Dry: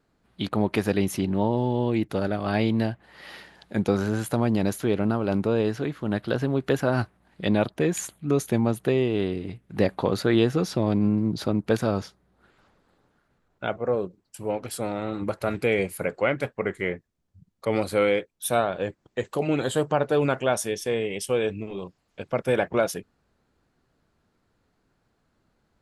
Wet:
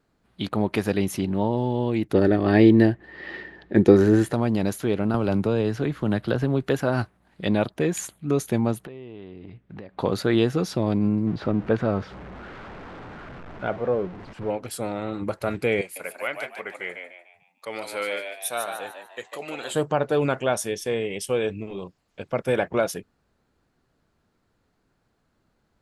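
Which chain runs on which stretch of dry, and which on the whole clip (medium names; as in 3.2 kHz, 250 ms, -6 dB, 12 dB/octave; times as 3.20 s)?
2.13–4.33 s: bass shelf 130 Hz +8.5 dB + small resonant body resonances 350/1800 Hz, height 14 dB, ringing for 25 ms + level-controlled noise filter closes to 2.9 kHz, open at -12 dBFS
5.14–6.63 s: bass shelf 79 Hz +10 dB + three bands compressed up and down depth 70%
8.85–9.99 s: low-pass 3.4 kHz + compression 8:1, threshold -36 dBFS
11.27–14.50 s: jump at every zero crossing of -33.5 dBFS + low-pass 2.1 kHz
15.81–19.73 s: high-pass 1.4 kHz 6 dB/octave + frequency-shifting echo 148 ms, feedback 38%, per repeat +84 Hz, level -6 dB
whole clip: none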